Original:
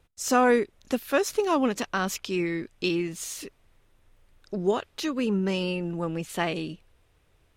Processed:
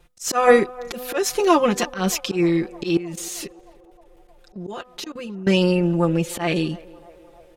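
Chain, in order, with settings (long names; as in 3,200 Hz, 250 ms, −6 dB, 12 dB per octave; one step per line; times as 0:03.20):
comb filter 5.7 ms, depth 87%
hum removal 250.7 Hz, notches 7
volume swells 138 ms
0:02.97–0:05.47: output level in coarse steps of 19 dB
feedback echo with a band-pass in the loop 310 ms, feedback 77%, band-pass 680 Hz, level −20 dB
level +6 dB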